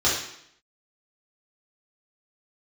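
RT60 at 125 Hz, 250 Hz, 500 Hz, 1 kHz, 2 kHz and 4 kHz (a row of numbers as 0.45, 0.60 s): 0.70, 0.75, 0.70, 0.70, 0.70, 0.70 s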